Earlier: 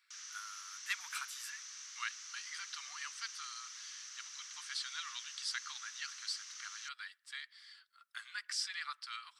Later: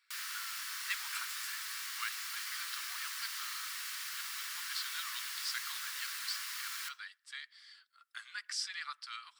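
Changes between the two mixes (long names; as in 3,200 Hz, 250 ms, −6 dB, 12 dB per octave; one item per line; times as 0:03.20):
background: remove transistor ladder low-pass 6,300 Hz, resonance 80%
reverb: on, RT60 0.45 s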